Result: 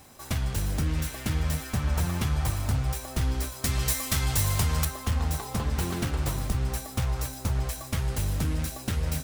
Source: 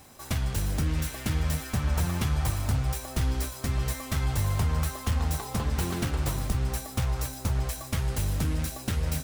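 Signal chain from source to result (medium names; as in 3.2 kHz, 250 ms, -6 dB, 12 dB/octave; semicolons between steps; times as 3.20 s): 3.64–4.85 s: treble shelf 2.4 kHz +10.5 dB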